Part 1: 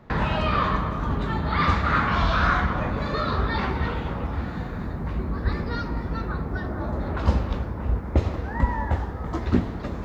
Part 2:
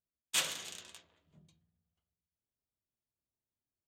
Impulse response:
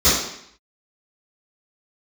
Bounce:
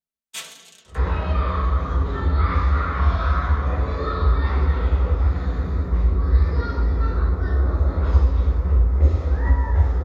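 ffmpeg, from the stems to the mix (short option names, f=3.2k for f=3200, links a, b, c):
-filter_complex "[0:a]acompressor=threshold=-27dB:ratio=3,equalizer=f=210:w=2.9:g=-13,acrossover=split=2600[a][b];[b]acompressor=threshold=-49dB:ratio=4:attack=1:release=60[c];[a][c]amix=inputs=2:normalize=0,adelay=850,volume=-4.5dB,asplit=2[d][e];[e]volume=-10.5dB[f];[1:a]aecho=1:1:4.5:0.79,volume=1dB[g];[2:a]atrim=start_sample=2205[h];[f][h]afir=irnorm=-1:irlink=0[i];[d][g][i]amix=inputs=3:normalize=0,flanger=delay=5.6:depth=9.6:regen=79:speed=1.5:shape=sinusoidal"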